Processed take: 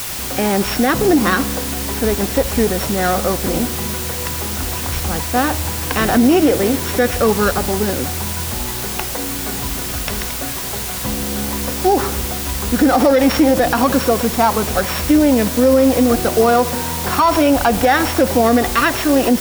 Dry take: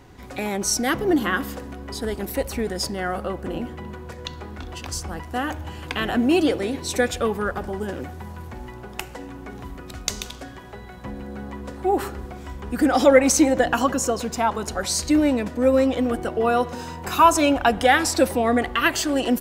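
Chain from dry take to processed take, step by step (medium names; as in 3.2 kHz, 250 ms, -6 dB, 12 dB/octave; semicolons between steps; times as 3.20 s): sorted samples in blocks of 8 samples; low-pass 2.4 kHz 12 dB/octave; peaking EQ 340 Hz -4 dB 0.28 oct; word length cut 6-bit, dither triangular; loudness maximiser +14 dB; trim -3.5 dB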